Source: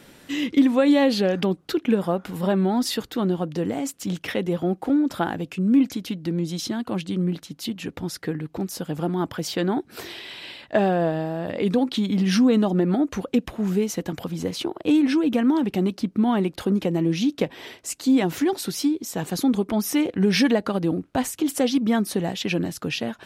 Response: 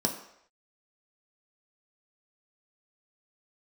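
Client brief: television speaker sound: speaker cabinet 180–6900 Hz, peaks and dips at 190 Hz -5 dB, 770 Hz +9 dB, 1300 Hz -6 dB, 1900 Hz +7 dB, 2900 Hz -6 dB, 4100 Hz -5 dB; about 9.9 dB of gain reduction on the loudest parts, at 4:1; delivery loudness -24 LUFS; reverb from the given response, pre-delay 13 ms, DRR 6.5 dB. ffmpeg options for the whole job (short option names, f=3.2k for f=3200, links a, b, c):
-filter_complex "[0:a]acompressor=threshold=-25dB:ratio=4,asplit=2[a][b];[1:a]atrim=start_sample=2205,adelay=13[c];[b][c]afir=irnorm=-1:irlink=0,volume=-14dB[d];[a][d]amix=inputs=2:normalize=0,highpass=f=180:w=0.5412,highpass=f=180:w=1.3066,equalizer=f=190:t=q:w=4:g=-5,equalizer=f=770:t=q:w=4:g=9,equalizer=f=1.3k:t=q:w=4:g=-6,equalizer=f=1.9k:t=q:w=4:g=7,equalizer=f=2.9k:t=q:w=4:g=-6,equalizer=f=4.1k:t=q:w=4:g=-5,lowpass=f=6.9k:w=0.5412,lowpass=f=6.9k:w=1.3066,volume=3.5dB"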